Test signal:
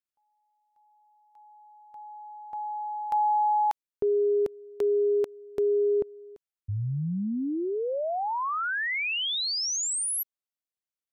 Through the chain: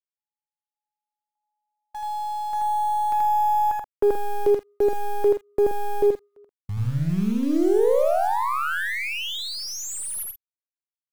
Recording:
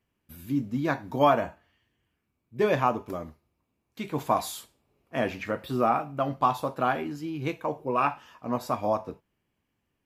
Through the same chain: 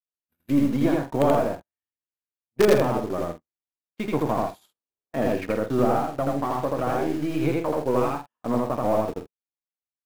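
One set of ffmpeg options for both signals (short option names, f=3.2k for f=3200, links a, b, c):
-filter_complex "[0:a]adynamicequalizer=threshold=0.00398:dfrequency=250:dqfactor=6:tfrequency=250:tqfactor=6:attack=5:release=100:ratio=0.375:range=3.5:mode=cutabove:tftype=bell,asplit=2[a][b];[b]highpass=f=720:p=1,volume=14dB,asoftclip=type=tanh:threshold=-8dB[c];[a][c]amix=inputs=2:normalize=0,lowpass=f=6k:p=1,volume=-6dB,acrossover=split=480[d][e];[e]acompressor=threshold=-30dB:ratio=8:attack=0.26:release=666:knee=2.83:detection=peak[f];[d][f]amix=inputs=2:normalize=0,agate=range=-41dB:threshold=-42dB:ratio=16:release=59:detection=peak,equalizer=f=5.9k:t=o:w=2.5:g=-9.5,asplit=2[g][h];[h]acrusher=bits=4:dc=4:mix=0:aa=0.000001,volume=-4dB[i];[g][i]amix=inputs=2:normalize=0,aecho=1:1:81.63|128.3:0.891|0.316,volume=2.5dB"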